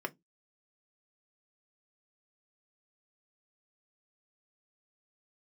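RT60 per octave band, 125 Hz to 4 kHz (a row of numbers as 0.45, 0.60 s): 0.25, 0.25, 0.20, 0.15, 0.10, 0.15 s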